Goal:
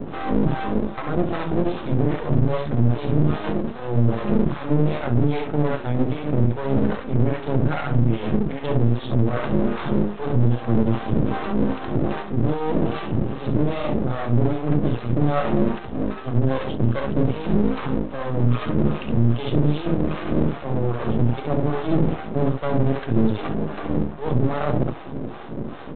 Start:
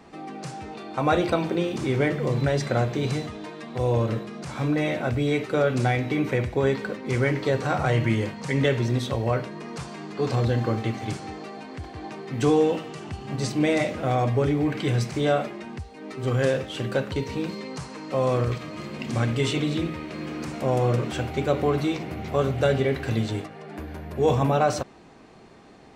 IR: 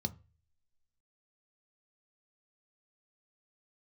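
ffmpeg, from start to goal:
-filter_complex "[0:a]areverse,acompressor=threshold=-36dB:ratio=12,areverse,aecho=1:1:54|68:0.2|0.631,acrossover=split=480[link_01][link_02];[link_01]aeval=exprs='val(0)*(1-1/2+1/2*cos(2*PI*2.5*n/s))':channel_layout=same[link_03];[link_02]aeval=exprs='val(0)*(1-1/2-1/2*cos(2*PI*2.5*n/s))':channel_layout=same[link_04];[link_03][link_04]amix=inputs=2:normalize=0[link_05];[1:a]atrim=start_sample=2205,atrim=end_sample=3528,asetrate=66150,aresample=44100[link_06];[link_05][link_06]afir=irnorm=-1:irlink=0,aresample=8000,aeval=exprs='max(val(0),0)':channel_layout=same,aresample=44100,alimiter=level_in=26.5dB:limit=-1dB:release=50:level=0:latency=1,volume=-6.5dB"

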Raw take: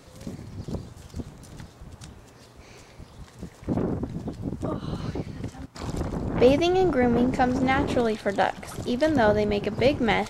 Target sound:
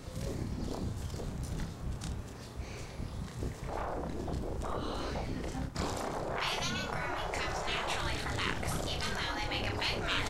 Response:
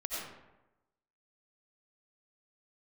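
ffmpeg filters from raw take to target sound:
-af "afftfilt=real='re*lt(hypot(re,im),0.1)':imag='im*lt(hypot(re,im),0.1)':win_size=1024:overlap=0.75,lowshelf=frequency=170:gain=8.5,aecho=1:1:31|79:0.631|0.237"

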